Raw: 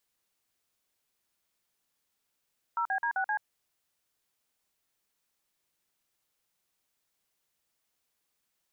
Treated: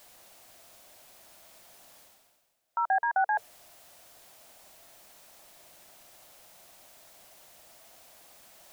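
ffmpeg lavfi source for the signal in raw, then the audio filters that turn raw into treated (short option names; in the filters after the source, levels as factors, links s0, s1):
-f lavfi -i "aevalsrc='0.0335*clip(min(mod(t,0.13),0.083-mod(t,0.13))/0.002,0,1)*(eq(floor(t/0.13),0)*(sin(2*PI*941*mod(t,0.13))+sin(2*PI*1336*mod(t,0.13)))+eq(floor(t/0.13),1)*(sin(2*PI*770*mod(t,0.13))+sin(2*PI*1633*mod(t,0.13)))+eq(floor(t/0.13),2)*(sin(2*PI*941*mod(t,0.13))+sin(2*PI*1633*mod(t,0.13)))+eq(floor(t/0.13),3)*(sin(2*PI*770*mod(t,0.13))+sin(2*PI*1477*mod(t,0.13)))+eq(floor(t/0.13),4)*(sin(2*PI*852*mod(t,0.13))+sin(2*PI*1633*mod(t,0.13))))':d=0.65:s=44100"
-af "equalizer=f=660:w=2.1:g=12,bandreject=f=450:w=13,areverse,acompressor=mode=upward:threshold=0.0178:ratio=2.5,areverse"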